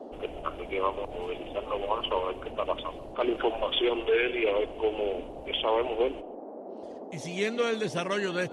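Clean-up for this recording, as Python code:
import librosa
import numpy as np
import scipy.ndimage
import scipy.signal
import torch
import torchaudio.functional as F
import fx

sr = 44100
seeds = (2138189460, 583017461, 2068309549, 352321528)

y = fx.noise_reduce(x, sr, print_start_s=6.28, print_end_s=6.78, reduce_db=30.0)
y = fx.fix_echo_inverse(y, sr, delay_ms=138, level_db=-20.5)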